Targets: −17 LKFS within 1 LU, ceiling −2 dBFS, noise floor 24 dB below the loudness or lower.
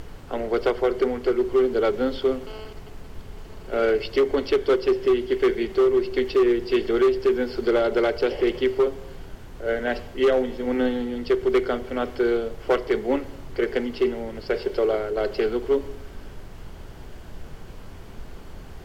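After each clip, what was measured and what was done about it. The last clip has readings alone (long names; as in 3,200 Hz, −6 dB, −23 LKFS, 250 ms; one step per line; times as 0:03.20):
share of clipped samples 1.9%; peaks flattened at −14.0 dBFS; background noise floor −41 dBFS; target noise floor −48 dBFS; integrated loudness −23.5 LKFS; sample peak −14.0 dBFS; target loudness −17.0 LKFS
→ clipped peaks rebuilt −14 dBFS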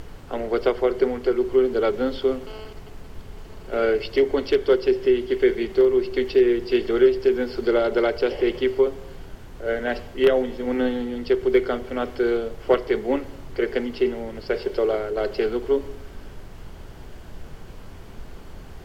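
share of clipped samples 0.0%; background noise floor −41 dBFS; target noise floor −47 dBFS
→ noise reduction from a noise print 6 dB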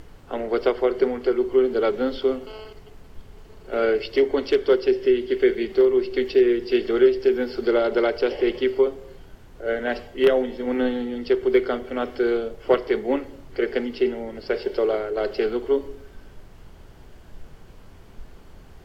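background noise floor −47 dBFS; integrated loudness −22.5 LKFS; sample peak −5.0 dBFS; target loudness −17.0 LKFS
→ level +5.5 dB
brickwall limiter −2 dBFS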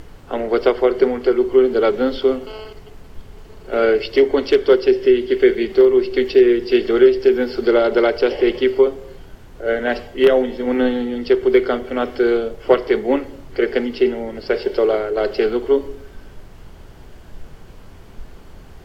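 integrated loudness −17.0 LKFS; sample peak −2.0 dBFS; background noise floor −41 dBFS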